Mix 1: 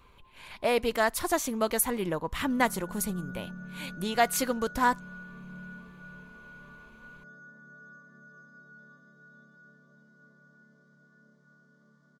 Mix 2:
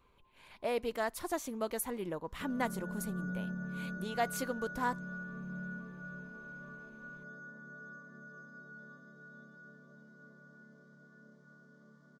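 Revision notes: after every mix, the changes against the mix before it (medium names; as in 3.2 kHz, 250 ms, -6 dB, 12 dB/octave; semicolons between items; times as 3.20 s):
speech -11.5 dB; master: add peaking EQ 400 Hz +4.5 dB 2.3 oct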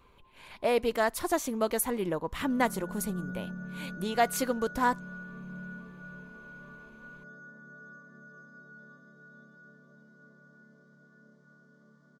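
speech +7.5 dB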